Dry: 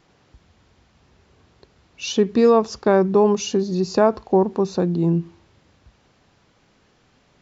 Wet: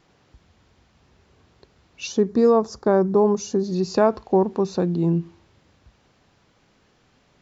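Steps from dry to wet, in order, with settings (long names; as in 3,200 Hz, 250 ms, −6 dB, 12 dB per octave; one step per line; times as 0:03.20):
0:02.07–0:03.64: parametric band 2,800 Hz −14.5 dB 1 octave
level −1.5 dB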